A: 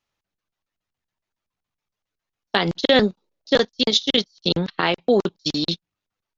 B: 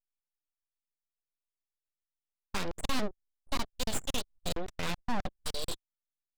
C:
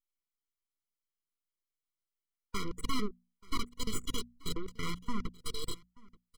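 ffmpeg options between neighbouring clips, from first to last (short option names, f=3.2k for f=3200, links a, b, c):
-af "aeval=exprs='abs(val(0))':c=same,aeval=exprs='(tanh(2.51*val(0)+0.8)-tanh(0.8))/2.51':c=same,anlmdn=0.158,volume=-2.5dB"
-af "bandreject=f=60:t=h:w=6,bandreject=f=120:t=h:w=6,bandreject=f=180:t=h:w=6,bandreject=f=240:t=h:w=6,aecho=1:1:882:0.0668,afftfilt=real='re*eq(mod(floor(b*sr/1024/480),2),0)':imag='im*eq(mod(floor(b*sr/1024/480),2),0)':win_size=1024:overlap=0.75"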